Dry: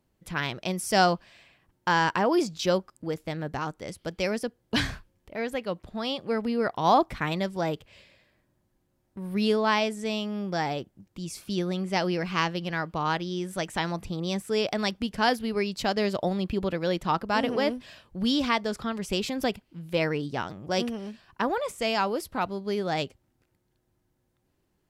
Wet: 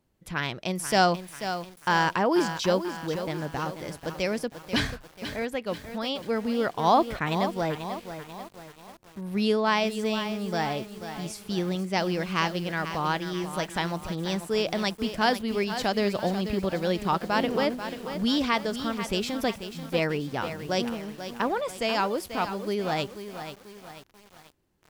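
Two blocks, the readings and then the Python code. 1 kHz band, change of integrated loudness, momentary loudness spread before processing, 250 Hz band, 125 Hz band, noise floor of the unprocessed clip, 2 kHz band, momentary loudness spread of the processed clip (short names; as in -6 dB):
+0.5 dB, 0.0 dB, 11 LU, +0.5 dB, +0.5 dB, -73 dBFS, +0.5 dB, 12 LU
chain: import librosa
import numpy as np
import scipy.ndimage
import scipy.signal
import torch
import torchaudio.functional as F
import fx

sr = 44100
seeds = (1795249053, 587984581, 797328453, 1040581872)

y = fx.echo_crushed(x, sr, ms=488, feedback_pct=55, bits=7, wet_db=-9.5)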